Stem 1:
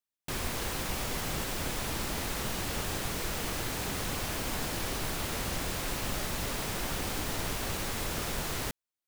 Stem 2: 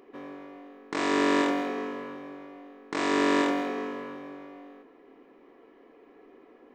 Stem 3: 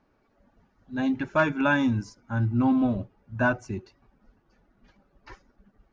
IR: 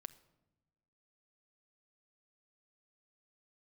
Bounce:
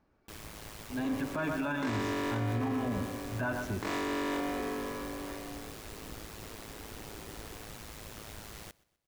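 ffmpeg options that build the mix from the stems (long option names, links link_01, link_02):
-filter_complex "[0:a]aeval=exprs='val(0)*sin(2*PI*54*n/s)':channel_layout=same,volume=-9.5dB,asplit=2[link_01][link_02];[link_02]volume=-23.5dB[link_03];[1:a]acompressor=threshold=-37dB:ratio=2,adelay=900,volume=1.5dB[link_04];[2:a]equalizer=frequency=72:width_type=o:width=1.1:gain=6,volume=-6.5dB,asplit=3[link_05][link_06][link_07];[link_06]volume=-6dB[link_08];[link_07]volume=-9.5dB[link_09];[link_01][link_05]amix=inputs=2:normalize=0,alimiter=level_in=4dB:limit=-24dB:level=0:latency=1:release=54,volume=-4dB,volume=0dB[link_10];[3:a]atrim=start_sample=2205[link_11];[link_08][link_11]afir=irnorm=-1:irlink=0[link_12];[link_03][link_09]amix=inputs=2:normalize=0,aecho=0:1:125|250|375|500|625|750:1|0.41|0.168|0.0689|0.0283|0.0116[link_13];[link_04][link_10][link_12][link_13]amix=inputs=4:normalize=0,alimiter=level_in=0.5dB:limit=-24dB:level=0:latency=1:release=15,volume=-0.5dB"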